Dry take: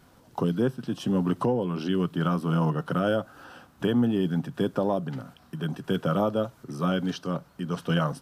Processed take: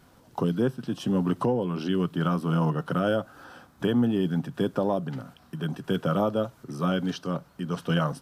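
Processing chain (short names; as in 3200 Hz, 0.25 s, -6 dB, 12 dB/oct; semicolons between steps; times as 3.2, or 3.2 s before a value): 3.36–3.84 notch 2800 Hz, Q 9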